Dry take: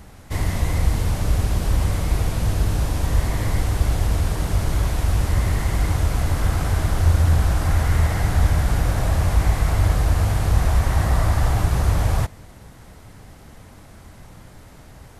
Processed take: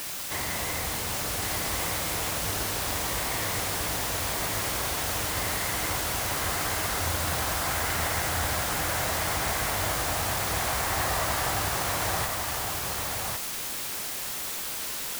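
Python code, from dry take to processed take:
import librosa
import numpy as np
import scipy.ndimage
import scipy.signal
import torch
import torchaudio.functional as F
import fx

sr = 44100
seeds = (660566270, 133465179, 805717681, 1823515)

y = fx.highpass(x, sr, hz=830.0, slope=6)
y = fx.quant_dither(y, sr, seeds[0], bits=6, dither='triangular')
y = y + 10.0 ** (-4.0 / 20.0) * np.pad(y, (int(1105 * sr / 1000.0), 0))[:len(y)]
y = y * librosa.db_to_amplitude(1.0)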